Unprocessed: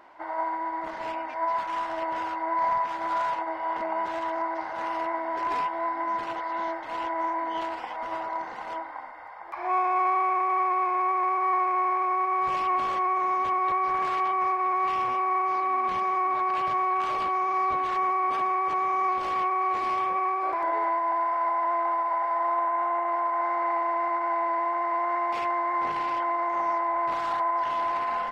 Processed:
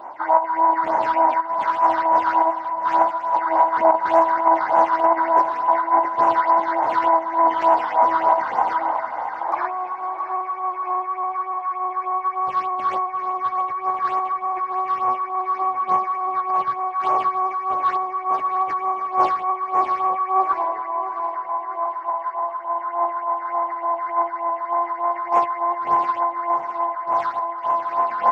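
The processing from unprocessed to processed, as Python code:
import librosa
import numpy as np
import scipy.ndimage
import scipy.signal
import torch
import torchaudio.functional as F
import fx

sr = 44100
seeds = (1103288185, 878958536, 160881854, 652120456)

y = scipy.signal.sosfilt(scipy.signal.butter(2, 71.0, 'highpass', fs=sr, output='sos'), x)
y = fx.peak_eq(y, sr, hz=880.0, db=14.5, octaves=1.6)
y = fx.over_compress(y, sr, threshold_db=-18.0, ratio=-0.5)
y = fx.phaser_stages(y, sr, stages=6, low_hz=620.0, high_hz=4000.0, hz=3.4, feedback_pct=40)
y = fx.echo_feedback(y, sr, ms=666, feedback_pct=46, wet_db=-12)
y = y * librosa.db_to_amplitude(2.0)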